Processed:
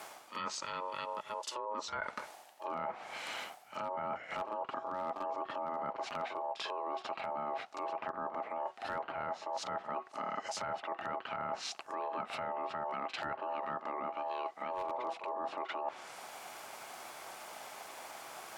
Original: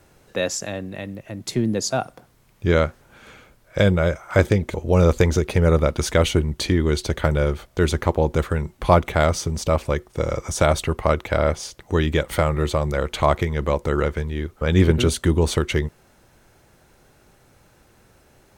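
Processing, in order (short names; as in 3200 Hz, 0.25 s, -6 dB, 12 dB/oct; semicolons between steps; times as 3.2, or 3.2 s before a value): ring modulator 740 Hz; treble ducked by the level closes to 1200 Hz, closed at -19.5 dBFS; HPF 910 Hz 6 dB/oct; wavefolder -15 dBFS; reverse echo 44 ms -17 dB; limiter -26 dBFS, peak gain reduction 11.5 dB; reverse; compressor 5:1, threshold -51 dBFS, peak gain reduction 18 dB; reverse; gain +13 dB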